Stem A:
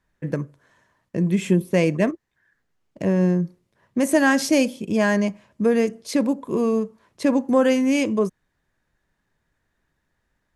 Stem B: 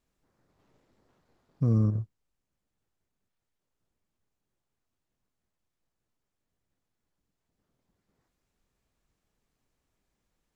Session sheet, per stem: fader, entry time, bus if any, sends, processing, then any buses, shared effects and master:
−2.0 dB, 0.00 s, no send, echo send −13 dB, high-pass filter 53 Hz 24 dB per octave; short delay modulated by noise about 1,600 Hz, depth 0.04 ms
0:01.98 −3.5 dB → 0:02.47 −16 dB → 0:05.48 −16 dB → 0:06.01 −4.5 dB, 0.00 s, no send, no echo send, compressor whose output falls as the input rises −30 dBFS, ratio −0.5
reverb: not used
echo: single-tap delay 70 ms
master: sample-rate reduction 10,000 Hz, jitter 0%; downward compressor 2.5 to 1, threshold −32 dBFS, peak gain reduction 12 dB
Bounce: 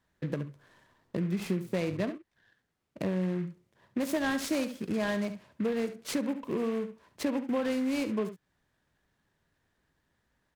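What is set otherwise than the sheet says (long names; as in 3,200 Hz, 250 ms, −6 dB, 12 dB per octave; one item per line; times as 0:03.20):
stem B −3.5 dB → −11.5 dB
master: missing sample-rate reduction 10,000 Hz, jitter 0%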